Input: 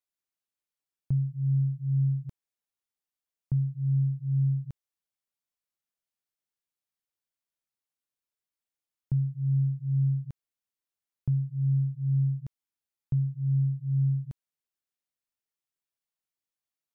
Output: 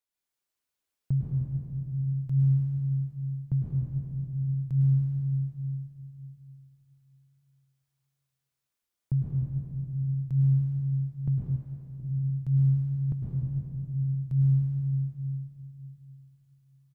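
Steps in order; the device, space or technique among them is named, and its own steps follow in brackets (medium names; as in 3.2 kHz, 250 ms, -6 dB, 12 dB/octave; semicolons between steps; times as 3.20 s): cave (delay 188 ms -12.5 dB; reverberation RT60 2.8 s, pre-delay 101 ms, DRR -5 dB); 11.56–12.00 s: bass shelf 340 Hz -9.5 dB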